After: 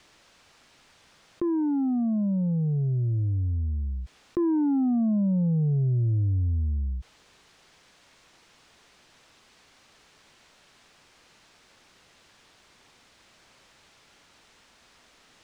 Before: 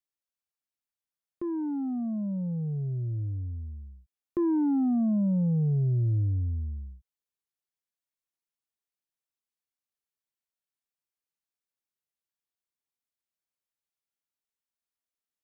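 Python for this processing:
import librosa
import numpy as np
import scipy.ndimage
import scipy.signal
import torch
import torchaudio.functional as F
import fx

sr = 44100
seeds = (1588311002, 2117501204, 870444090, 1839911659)

y = fx.air_absorb(x, sr, metres=110.0)
y = fx.env_flatten(y, sr, amount_pct=70)
y = y * librosa.db_to_amplitude(1.5)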